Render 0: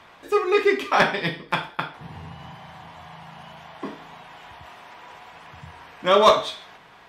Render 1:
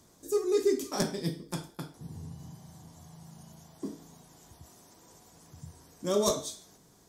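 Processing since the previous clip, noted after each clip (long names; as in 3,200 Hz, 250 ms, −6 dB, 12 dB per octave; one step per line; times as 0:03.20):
drawn EQ curve 330 Hz 0 dB, 820 Hz −16 dB, 2,700 Hz −22 dB, 6,500 Hz +10 dB
level −2.5 dB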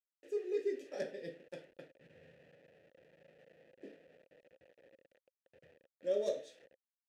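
hold until the input has moved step −45 dBFS
formant filter e
level +2.5 dB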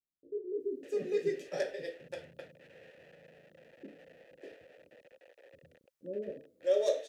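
multiband delay without the direct sound lows, highs 600 ms, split 360 Hz
level +7.5 dB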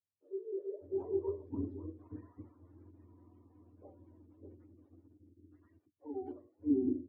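frequency axis turned over on the octave scale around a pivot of 400 Hz
gain on a spectral selection 0:05.37–0:05.91, 420–1,200 Hz −6 dB
one half of a high-frequency compander decoder only
level −1.5 dB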